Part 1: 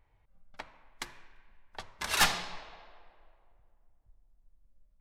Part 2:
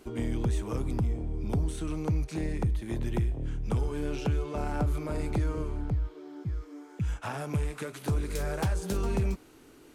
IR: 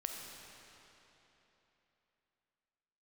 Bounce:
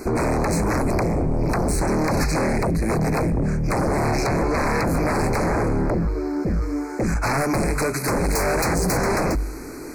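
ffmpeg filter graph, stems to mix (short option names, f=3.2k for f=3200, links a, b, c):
-filter_complex "[0:a]volume=-3.5dB[a];[1:a]bandreject=f=49.3:t=h:w=4,bandreject=f=98.6:t=h:w=4,bandreject=f=147.9:t=h:w=4,aeval=exprs='0.133*sin(PI/2*6.31*val(0)/0.133)':c=same,volume=0dB[b];[a][b]amix=inputs=2:normalize=0,asuperstop=centerf=3200:order=12:qfactor=2"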